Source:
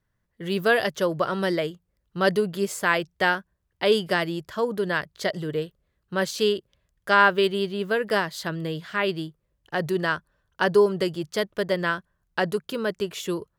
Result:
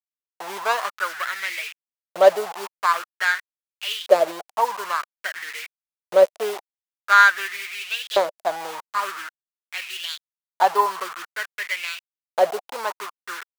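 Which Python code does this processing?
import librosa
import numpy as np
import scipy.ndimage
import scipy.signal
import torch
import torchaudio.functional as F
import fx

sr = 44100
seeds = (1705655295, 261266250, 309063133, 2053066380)

y = scipy.ndimage.median_filter(x, 25, mode='constant')
y = fx.quant_dither(y, sr, seeds[0], bits=6, dither='none')
y = fx.filter_lfo_highpass(y, sr, shape='saw_up', hz=0.49, low_hz=520.0, high_hz=3500.0, q=5.7)
y = y * librosa.db_to_amplitude(2.0)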